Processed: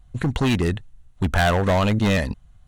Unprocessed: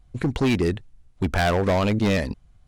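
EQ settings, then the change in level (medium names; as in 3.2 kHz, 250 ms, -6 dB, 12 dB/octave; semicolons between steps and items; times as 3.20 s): peaking EQ 360 Hz -6.5 dB 1.3 oct; peaking EQ 5 kHz -8.5 dB 0.25 oct; band-stop 2.3 kHz, Q 11; +4.0 dB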